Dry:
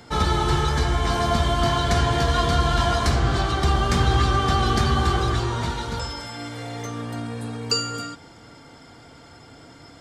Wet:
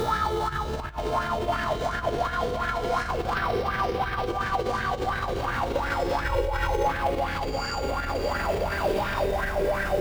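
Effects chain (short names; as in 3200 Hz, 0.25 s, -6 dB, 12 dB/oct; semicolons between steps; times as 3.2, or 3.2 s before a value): spectral swells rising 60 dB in 1.16 s; diffused feedback echo 0.579 s, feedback 47%, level -9.5 dB; echoes that change speed 0.649 s, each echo -6 st, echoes 2; 0.49–0.97 low shelf 140 Hz +7.5 dB; 3.35–4.26 elliptic low-pass 5700 Hz; spring tank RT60 1.3 s, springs 50 ms, chirp 35 ms, DRR 9 dB; bit-crush 6-bit; negative-ratio compressor -19 dBFS, ratio -0.5; limiter -16.5 dBFS, peak gain reduction 11 dB; 6.24–6.87 comb 2.1 ms, depth 92%; LFO bell 2.8 Hz 410–1700 Hz +18 dB; gain -7.5 dB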